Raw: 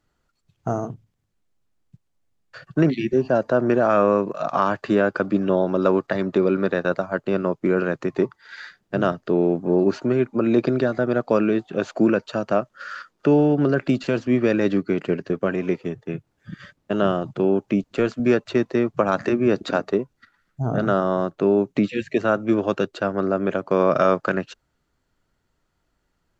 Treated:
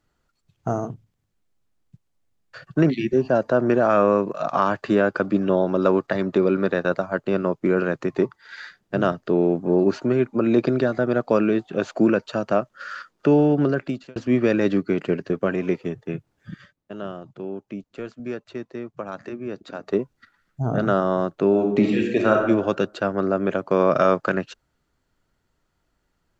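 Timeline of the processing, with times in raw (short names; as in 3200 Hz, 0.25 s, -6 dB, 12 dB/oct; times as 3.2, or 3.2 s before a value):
13.61–14.16 fade out
16.51–19.97 dip -12.5 dB, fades 0.18 s
21.49–22.43 reverb throw, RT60 0.93 s, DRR 1.5 dB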